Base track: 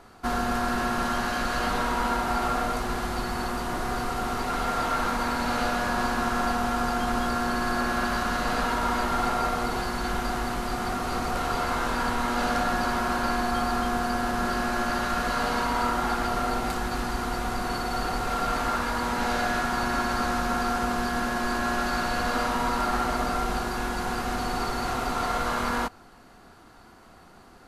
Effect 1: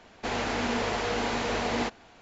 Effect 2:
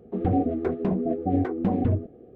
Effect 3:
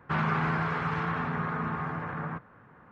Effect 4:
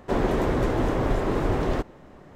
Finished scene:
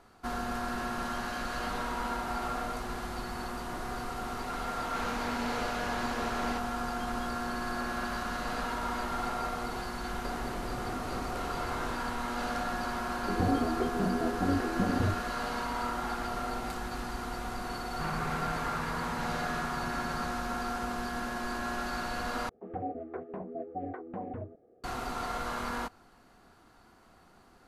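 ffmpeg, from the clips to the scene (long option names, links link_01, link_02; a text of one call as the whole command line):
ffmpeg -i bed.wav -i cue0.wav -i cue1.wav -i cue2.wav -i cue3.wav -filter_complex "[2:a]asplit=2[link_01][link_02];[0:a]volume=-8dB[link_03];[4:a]acompressor=threshold=-28dB:ratio=6:attack=3.2:release=140:knee=1:detection=peak[link_04];[link_02]acrossover=split=530 2100:gain=0.2 1 0.0631[link_05][link_06][link_07];[link_05][link_06][link_07]amix=inputs=3:normalize=0[link_08];[link_03]asplit=2[link_09][link_10];[link_09]atrim=end=22.494[link_11];[link_08]atrim=end=2.35,asetpts=PTS-STARTPTS,volume=-5.5dB[link_12];[link_10]atrim=start=24.836[link_13];[1:a]atrim=end=2.21,asetpts=PTS-STARTPTS,volume=-10dB,afade=type=in:duration=0.004:curve=hsin,afade=type=out:start_time=2.206:duration=0.004:curve=hsin,adelay=4700[link_14];[link_04]atrim=end=2.35,asetpts=PTS-STARTPTS,volume=-10dB,afade=type=in:duration=0.004:curve=hsin,afade=type=out:start_time=2.346:duration=0.004:curve=hsin,adelay=10160[link_15];[link_01]atrim=end=2.35,asetpts=PTS-STARTPTS,volume=-6dB,afade=type=in:duration=0.004:curve=hsin,afade=type=out:start_time=2.346:duration=0.004:curve=hsin,adelay=13150[link_16];[3:a]atrim=end=2.91,asetpts=PTS-STARTPTS,volume=-8.5dB,afade=type=in:duration=0.004:curve=hsin,afade=type=out:start_time=2.906:duration=0.004:curve=hsin,adelay=17900[link_17];[link_11][link_12]acrossfade=duration=0.004:curve1=hsin:curve2=hsin[link_18];[link_18][link_13]acrossfade=duration=0.004:curve1=hsin:curve2=hsin[link_19];[link_19][link_14][link_15][link_16][link_17]amix=inputs=5:normalize=0" out.wav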